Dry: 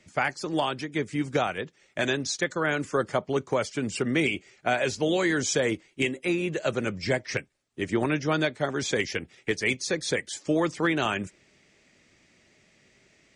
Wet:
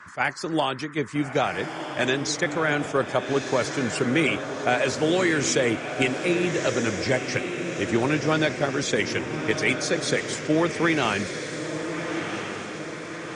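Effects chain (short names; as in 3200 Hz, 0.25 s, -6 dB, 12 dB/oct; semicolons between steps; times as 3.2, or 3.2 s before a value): on a send: diffused feedback echo 1.328 s, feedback 55%, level -7 dB; on the sum: band noise 980–1900 Hz -48 dBFS; attack slew limiter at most 410 dB/s; gain +2.5 dB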